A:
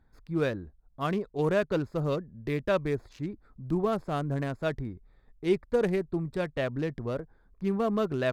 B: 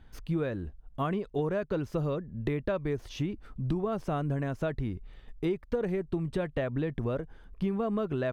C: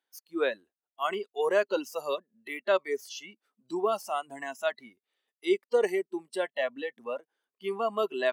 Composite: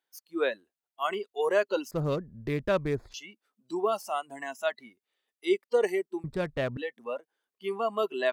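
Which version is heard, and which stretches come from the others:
C
1.91–3.14 from A
6.24–6.77 from A
not used: B

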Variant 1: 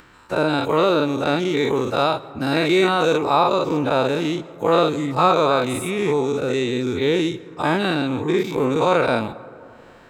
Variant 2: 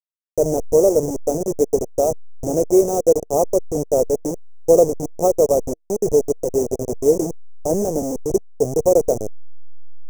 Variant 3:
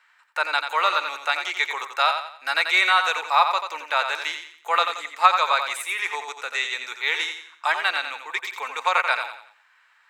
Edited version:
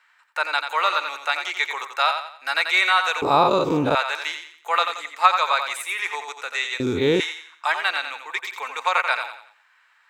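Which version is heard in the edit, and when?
3
3.22–3.95 from 1
6.8–7.2 from 1
not used: 2

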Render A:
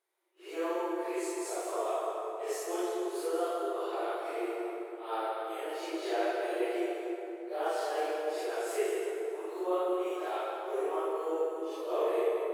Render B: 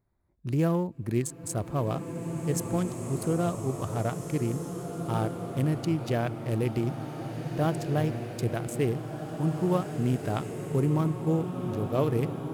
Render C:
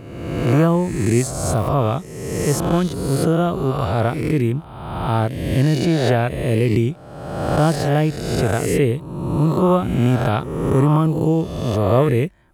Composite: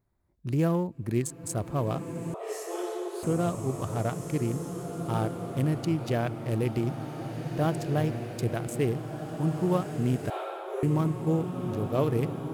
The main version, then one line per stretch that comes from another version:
B
2.34–3.23 from A
10.3–10.83 from A
not used: C

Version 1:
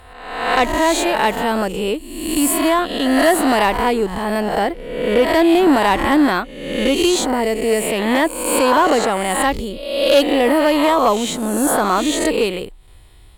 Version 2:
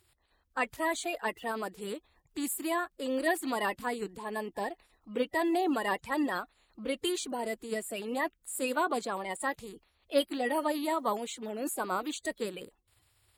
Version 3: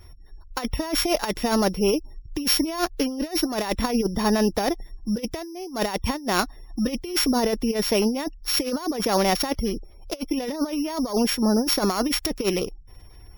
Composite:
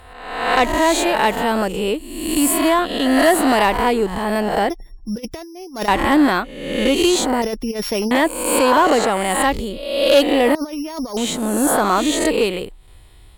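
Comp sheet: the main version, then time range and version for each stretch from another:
1
4.7–5.88 from 3
7.42–8.11 from 3
10.55–11.17 from 3
not used: 2

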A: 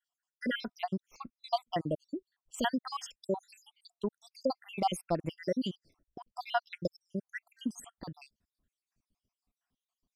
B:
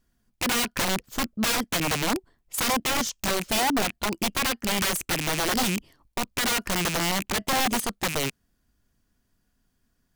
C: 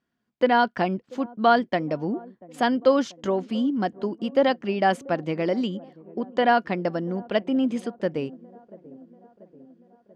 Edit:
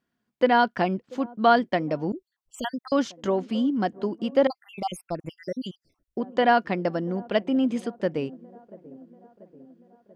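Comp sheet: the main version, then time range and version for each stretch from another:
C
2.12–2.92 from A
4.47–6.17 from A
not used: B

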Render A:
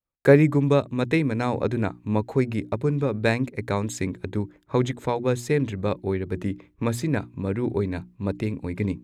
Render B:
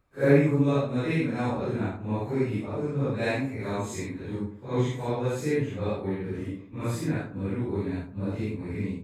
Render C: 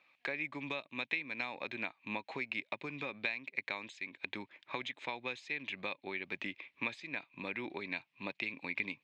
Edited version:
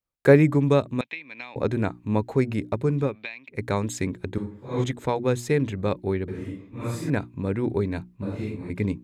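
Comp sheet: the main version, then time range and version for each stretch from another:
A
1.01–1.56 from C
3.11–3.53 from C, crossfade 0.10 s
4.38–4.84 from B
6.28–7.1 from B
8.22–8.7 from B

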